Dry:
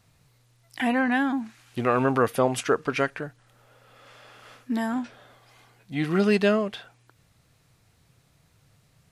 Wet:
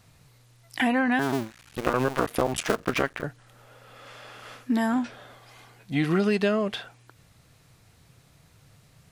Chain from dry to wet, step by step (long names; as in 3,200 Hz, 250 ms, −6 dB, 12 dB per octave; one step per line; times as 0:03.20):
0:01.19–0:03.25: sub-harmonics by changed cycles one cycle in 2, muted
downward compressor 6 to 1, threshold −25 dBFS, peak gain reduction 8.5 dB
level +5 dB